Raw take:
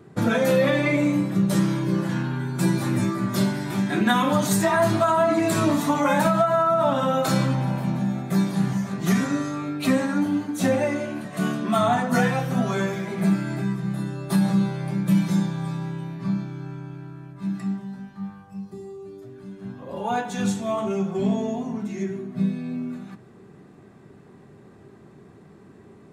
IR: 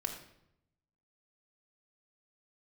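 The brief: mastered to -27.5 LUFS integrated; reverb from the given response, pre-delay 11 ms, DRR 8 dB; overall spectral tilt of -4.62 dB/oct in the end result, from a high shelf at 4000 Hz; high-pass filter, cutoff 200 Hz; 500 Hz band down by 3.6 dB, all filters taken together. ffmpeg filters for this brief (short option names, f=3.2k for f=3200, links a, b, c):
-filter_complex "[0:a]highpass=200,equalizer=f=500:t=o:g=-5,highshelf=f=4k:g=8,asplit=2[a][b];[1:a]atrim=start_sample=2205,adelay=11[c];[b][c]afir=irnorm=-1:irlink=0,volume=-9.5dB[d];[a][d]amix=inputs=2:normalize=0,volume=-3dB"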